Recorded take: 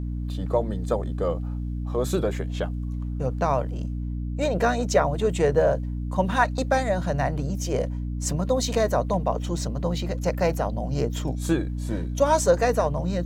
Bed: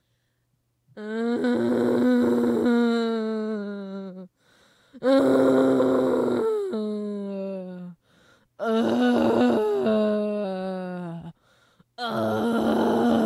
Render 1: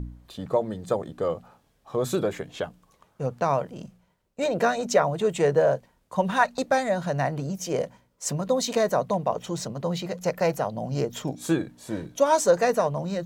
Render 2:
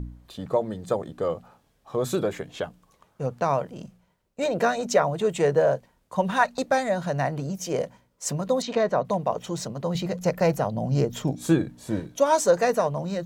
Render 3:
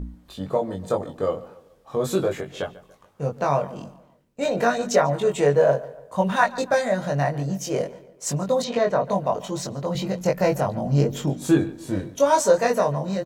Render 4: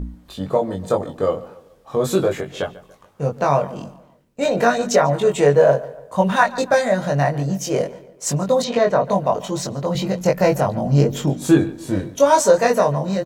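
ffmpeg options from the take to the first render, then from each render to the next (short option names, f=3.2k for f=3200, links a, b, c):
-af "bandreject=f=60:t=h:w=4,bandreject=f=120:t=h:w=4,bandreject=f=180:t=h:w=4,bandreject=f=240:t=h:w=4,bandreject=f=300:t=h:w=4"
-filter_complex "[0:a]asettb=1/sr,asplit=3[a][b][c];[a]atrim=end=8.624[d];[b]atrim=start=8.62:end=9.05,asetpts=PTS-STARTPTS,afade=t=in:d=0.004:c=qsin,afade=t=out:st=0.426:d=0.004:c=qsin,lowpass=3.6k[e];[c]atrim=start=9.046[f];[d][e]acrossfade=d=0.004:c1=hsin:c2=qsin[g];[g][f]acrossfade=d=0.004:c1=qsin:c2=hsin,asettb=1/sr,asplit=3[h][i][j];[h]atrim=end=9.954[k];[i]atrim=start=9.95:end=12,asetpts=PTS-STARTPTS,afade=t=in:d=0.004:c=qsin,afade=t=out:st=2.046:d=0.004:c=qsin,lowshelf=f=250:g=8[l];[j]atrim=start=11.996[m];[k][l]acrossfade=d=0.004:c1=hsin:c2=qsin[n];[n][m]acrossfade=d=0.004:c1=qsin:c2=hsin"
-filter_complex "[0:a]asplit=2[a][b];[b]adelay=21,volume=-2.5dB[c];[a][c]amix=inputs=2:normalize=0,asplit=2[d][e];[e]adelay=143,lowpass=f=3.5k:p=1,volume=-18dB,asplit=2[f][g];[g]adelay=143,lowpass=f=3.5k:p=1,volume=0.44,asplit=2[h][i];[i]adelay=143,lowpass=f=3.5k:p=1,volume=0.44,asplit=2[j][k];[k]adelay=143,lowpass=f=3.5k:p=1,volume=0.44[l];[d][f][h][j][l]amix=inputs=5:normalize=0"
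-af "volume=4.5dB,alimiter=limit=-3dB:level=0:latency=1"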